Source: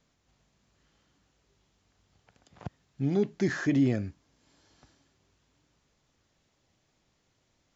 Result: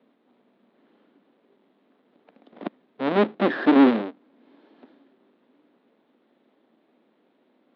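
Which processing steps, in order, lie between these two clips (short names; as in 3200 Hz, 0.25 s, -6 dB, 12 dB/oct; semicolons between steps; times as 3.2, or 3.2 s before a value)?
half-waves squared off; tilt shelf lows +6.5 dB, about 870 Hz; added harmonics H 4 -13 dB, 5 -23 dB, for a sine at -8.5 dBFS; Chebyshev band-pass 230–3800 Hz, order 4; gain +2 dB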